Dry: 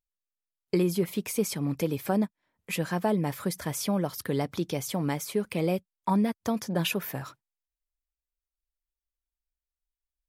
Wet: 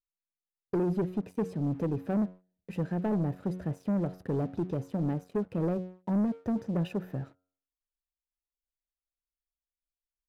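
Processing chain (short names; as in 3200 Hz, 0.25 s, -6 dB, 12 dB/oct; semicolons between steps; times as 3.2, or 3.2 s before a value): running mean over 40 samples; de-hum 91.66 Hz, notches 17; sample leveller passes 2; gain -5 dB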